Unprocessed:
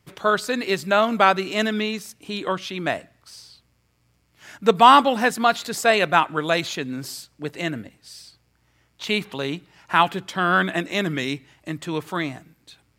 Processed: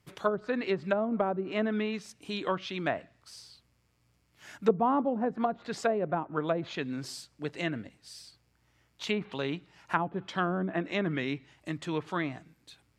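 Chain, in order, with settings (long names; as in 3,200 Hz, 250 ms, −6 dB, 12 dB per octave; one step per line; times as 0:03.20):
treble cut that deepens with the level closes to 510 Hz, closed at −15.5 dBFS
level −5.5 dB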